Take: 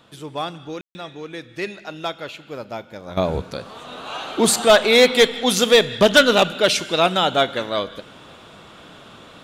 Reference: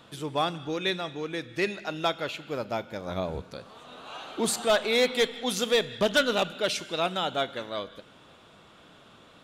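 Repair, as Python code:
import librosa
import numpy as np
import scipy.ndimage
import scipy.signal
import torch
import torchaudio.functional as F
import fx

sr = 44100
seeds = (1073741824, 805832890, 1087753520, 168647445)

y = fx.fix_ambience(x, sr, seeds[0], print_start_s=8.35, print_end_s=8.85, start_s=0.81, end_s=0.95)
y = fx.fix_level(y, sr, at_s=3.17, step_db=-10.5)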